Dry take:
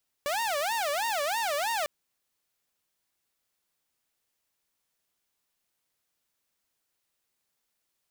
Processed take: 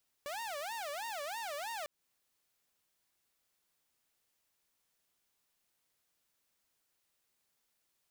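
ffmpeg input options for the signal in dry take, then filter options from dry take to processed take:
-f lavfi -i "aevalsrc='0.0596*(2*mod((750.5*t-180.5/(2*PI*3.1)*sin(2*PI*3.1*t)),1)-1)':d=1.6:s=44100"
-af "alimiter=level_in=3.98:limit=0.0631:level=0:latency=1:release=184,volume=0.251"

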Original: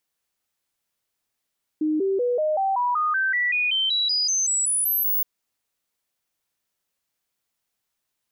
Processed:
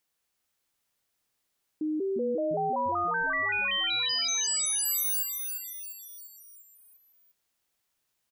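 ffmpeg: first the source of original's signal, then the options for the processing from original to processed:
-f lavfi -i "aevalsrc='0.106*clip(min(mod(t,0.19),0.19-mod(t,0.19))/0.005,0,1)*sin(2*PI*308*pow(2,floor(t/0.19)/3)*mod(t,0.19))':d=3.42:s=44100"
-filter_complex "[0:a]alimiter=level_in=1.33:limit=0.0631:level=0:latency=1:release=121,volume=0.75,asplit=7[s0][s1][s2][s3][s4][s5][s6];[s1]adelay=348,afreqshift=-72,volume=0.501[s7];[s2]adelay=696,afreqshift=-144,volume=0.26[s8];[s3]adelay=1044,afreqshift=-216,volume=0.135[s9];[s4]adelay=1392,afreqshift=-288,volume=0.0708[s10];[s5]adelay=1740,afreqshift=-360,volume=0.0367[s11];[s6]adelay=2088,afreqshift=-432,volume=0.0191[s12];[s0][s7][s8][s9][s10][s11][s12]amix=inputs=7:normalize=0"

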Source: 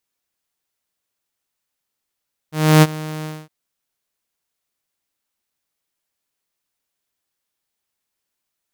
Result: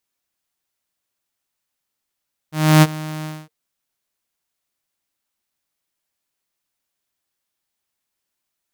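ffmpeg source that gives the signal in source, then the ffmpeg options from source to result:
-f lavfi -i "aevalsrc='0.668*(2*mod(155*t,1)-1)':d=0.963:s=44100,afade=t=in:d=0.303,afade=t=out:st=0.303:d=0.038:silence=0.106,afade=t=out:st=0.73:d=0.233"
-af "bandreject=f=460:w=12"

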